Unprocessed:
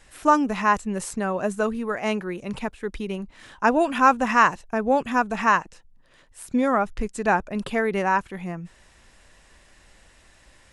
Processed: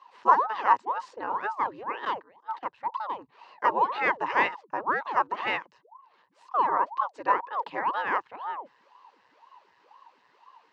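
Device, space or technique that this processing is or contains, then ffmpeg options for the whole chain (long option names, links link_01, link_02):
voice changer toy: -filter_complex "[0:a]aeval=exprs='val(0)*sin(2*PI*580*n/s+580*0.9/2*sin(2*PI*2*n/s))':channel_layout=same,highpass=570,equalizer=frequency=670:width_type=q:width=4:gain=-9,equalizer=frequency=970:width_type=q:width=4:gain=10,equalizer=frequency=1400:width_type=q:width=4:gain=-7,equalizer=frequency=2300:width_type=q:width=4:gain=-9,equalizer=frequency=3400:width_type=q:width=4:gain=-9,lowpass=frequency=3900:width=0.5412,lowpass=frequency=3900:width=1.3066,asettb=1/sr,asplit=3[link_01][link_02][link_03];[link_01]atrim=end=2.054[link_04];[link_02]atrim=start=2.05:end=2.63,asetpts=PTS-STARTPTS,afade=type=in:duration=0.004:curve=qsin,afade=type=out:start_time=0.576:duration=0.004:curve=qsin,agate=range=-17dB:threshold=-34dB:ratio=16:detection=peak[link_05];[link_03]atrim=start=2.626[link_06];[link_04][link_05]acrossfade=duration=0.004:curve1=hsin:curve2=qsin[link_07];[link_07][link_06]acrossfade=duration=0.004:curve1=qsin:curve2=hsin"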